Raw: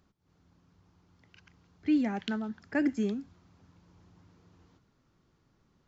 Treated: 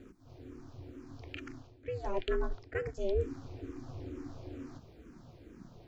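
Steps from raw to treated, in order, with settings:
low-shelf EQ 190 Hz +10.5 dB
reversed playback
downward compressor 8 to 1, threshold −40 dBFS, peak gain reduction 20 dB
reversed playback
ring modulation 190 Hz
hollow resonant body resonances 710/2,400 Hz, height 7 dB
frequency shifter mixed with the dry sound −2.2 Hz
level +15.5 dB

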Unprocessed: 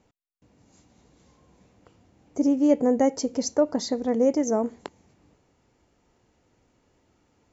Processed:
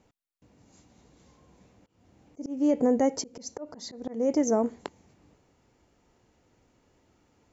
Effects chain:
brickwall limiter −15 dBFS, peak gain reduction 6.5 dB
volume swells 245 ms

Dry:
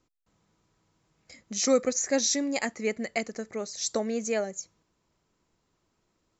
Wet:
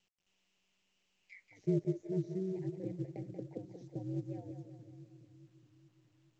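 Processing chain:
Chebyshev band-stop filter 800–1,800 Hz, order 2
envelope filter 250–2,900 Hz, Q 9, down, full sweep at −30 dBFS
ring modulation 95 Hz
echo with a time of its own for lows and highs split 320 Hz, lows 418 ms, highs 184 ms, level −8.5 dB
level +4 dB
mu-law 128 kbit/s 16,000 Hz

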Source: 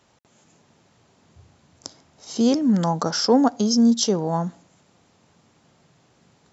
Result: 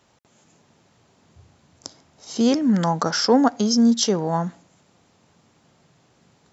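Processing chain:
dynamic equaliser 1,900 Hz, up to +7 dB, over −44 dBFS, Q 1.1

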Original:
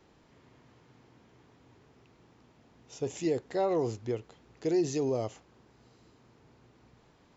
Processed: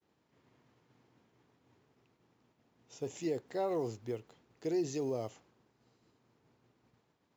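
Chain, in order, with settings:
one scale factor per block 7 bits
high-pass filter 91 Hz
downward expander −56 dBFS
level −5.5 dB

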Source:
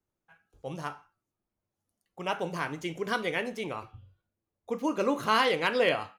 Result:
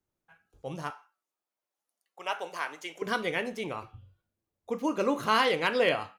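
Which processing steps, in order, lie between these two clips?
0:00.90–0:03.02: high-pass filter 610 Hz 12 dB per octave

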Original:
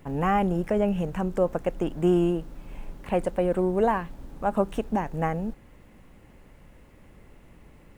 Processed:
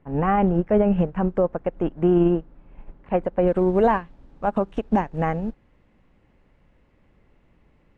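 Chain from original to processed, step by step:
low-pass filter 2,000 Hz 12 dB per octave, from 0:03.47 4,400 Hz
boost into a limiter +18 dB
expander for the loud parts 2.5 to 1, over −18 dBFS
level −8 dB

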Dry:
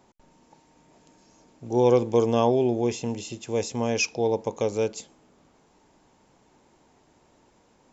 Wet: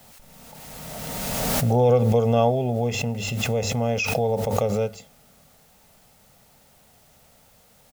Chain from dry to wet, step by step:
bass and treble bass +4 dB, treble −11 dB
mains-hum notches 50/100 Hz
comb filter 1.5 ms, depth 90%
background noise white −57 dBFS
background raised ahead of every attack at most 21 dB per second
level −1.5 dB

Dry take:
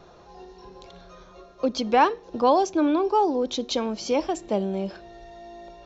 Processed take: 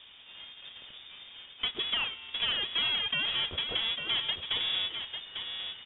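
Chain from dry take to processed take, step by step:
each half-wave held at its own peak
tuned comb filter 82 Hz, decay 1.7 s, harmonics odd, mix 50%
downward compressor 12 to 1, threshold −27 dBFS, peak gain reduction 11 dB
voice inversion scrambler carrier 3,600 Hz
on a send: single-tap delay 848 ms −7.5 dB
on the sum: level −1.5 dB

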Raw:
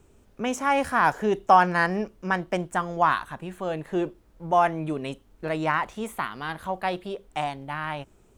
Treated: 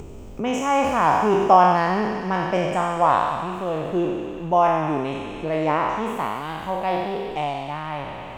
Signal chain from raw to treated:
peak hold with a decay on every bin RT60 1.46 s
high-shelf EQ 7,600 Hz −6 dB
upward compression, threshold −27 dBFS
graphic EQ with 15 bands 1,600 Hz −11 dB, 4,000 Hz −6 dB, 10,000 Hz −12 dB
delay with a high-pass on its return 94 ms, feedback 84%, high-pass 1,900 Hz, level −9 dB
level +2.5 dB

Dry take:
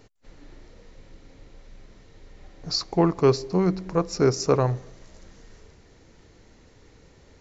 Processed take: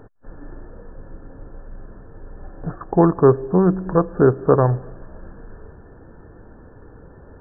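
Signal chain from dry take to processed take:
in parallel at −0.5 dB: downward compressor, threshold −32 dBFS, peak gain reduction 17.5 dB
on the sum: linear-phase brick-wall low-pass 1,800 Hz
level +4.5 dB

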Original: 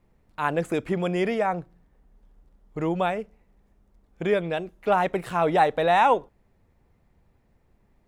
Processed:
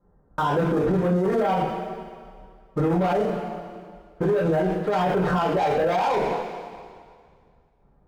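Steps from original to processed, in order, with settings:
Butterworth low-pass 1,600 Hz 48 dB per octave
leveller curve on the samples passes 3
square-wave tremolo 1.8 Hz, depth 65%, duty 75%
downward compressor, threshold −19 dBFS, peak gain reduction 6.5 dB
coupled-rooms reverb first 0.41 s, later 2 s, from −18 dB, DRR −10 dB
brickwall limiter −15 dBFS, peak gain reduction 17.5 dB

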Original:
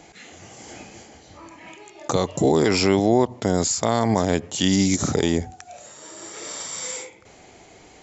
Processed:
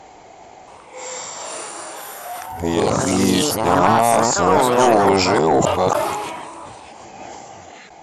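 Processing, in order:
played backwards from end to start
parametric band 810 Hz +12.5 dB 1.2 octaves
in parallel at −6 dB: sine wavefolder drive 7 dB, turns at 2 dBFS
on the sum: delay with pitch and tempo change per echo 676 ms, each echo +4 semitones, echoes 2
level that may fall only so fast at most 31 dB per second
level −10 dB

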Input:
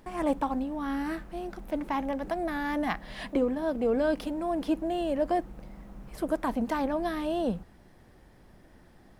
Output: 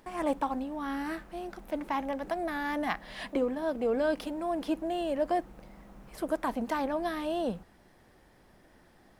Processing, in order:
low-shelf EQ 260 Hz −8 dB

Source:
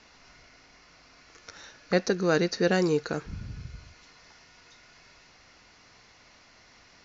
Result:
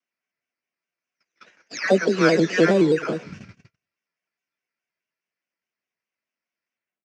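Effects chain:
every frequency bin delayed by itself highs early, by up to 410 ms
in parallel at −4.5 dB: decimation without filtering 11×
on the sum: dynamic equaliser 2,700 Hz, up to −5 dB, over −51 dBFS, Q 3.4
on a send: single-tap delay 112 ms −19.5 dB
on the sum: bit reduction 10 bits
loudspeaker in its box 250–6,000 Hz, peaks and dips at 310 Hz −3 dB, 490 Hz −5 dB, 820 Hz −9 dB, 1,200 Hz −6 dB, 2,500 Hz +5 dB, 4,100 Hz −10 dB
noise gate −46 dBFS, range −41 dB
pitch modulation by a square or saw wave square 4.8 Hz, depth 100 cents
level +8 dB

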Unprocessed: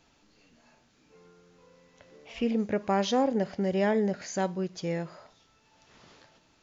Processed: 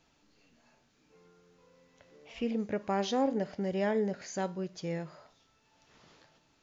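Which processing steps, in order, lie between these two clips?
flanger 0.81 Hz, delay 6.1 ms, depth 1.7 ms, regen +88%

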